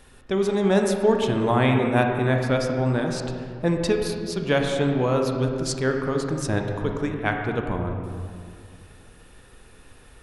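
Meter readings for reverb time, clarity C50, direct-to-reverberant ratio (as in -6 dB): 2.1 s, 3.5 dB, 2.5 dB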